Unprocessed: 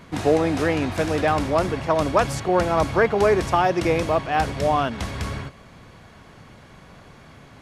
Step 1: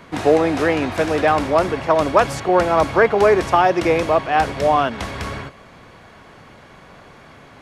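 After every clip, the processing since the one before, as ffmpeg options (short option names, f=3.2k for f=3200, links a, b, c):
-filter_complex "[0:a]bass=f=250:g=-7,treble=f=4k:g=-12,acrossover=split=540|4600[a][b][c];[c]acontrast=84[d];[a][b][d]amix=inputs=3:normalize=0,volume=5dB"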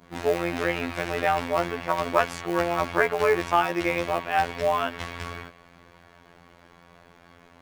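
-af "acrusher=bits=6:mode=log:mix=0:aa=0.000001,adynamicequalizer=threshold=0.0251:dfrequency=2300:dqfactor=0.82:tfrequency=2300:tqfactor=0.82:attack=5:release=100:ratio=0.375:range=3:mode=boostabove:tftype=bell,afftfilt=real='hypot(re,im)*cos(PI*b)':imag='0':win_size=2048:overlap=0.75,volume=-6dB"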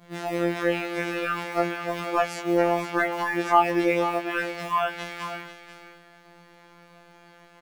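-af "acontrast=55,aecho=1:1:491:0.282,afftfilt=real='re*2.83*eq(mod(b,8),0)':imag='im*2.83*eq(mod(b,8),0)':win_size=2048:overlap=0.75,volume=-8dB"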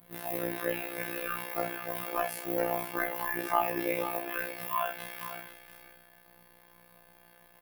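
-filter_complex "[0:a]tremolo=f=62:d=0.75,aexciter=amount=15.3:drive=3.2:freq=9.9k,asplit=2[a][b];[b]aecho=0:1:33|65:0.422|0.316[c];[a][c]amix=inputs=2:normalize=0,volume=-6dB"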